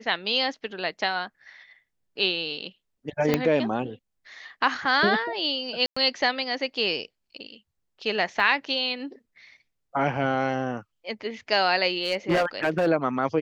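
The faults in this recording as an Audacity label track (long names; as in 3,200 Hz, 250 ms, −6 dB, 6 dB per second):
3.340000	3.340000	click −7 dBFS
5.860000	5.960000	drop-out 105 ms
8.400000	8.400000	drop-out 2.7 ms
11.980000	12.880000	clipping −17.5 dBFS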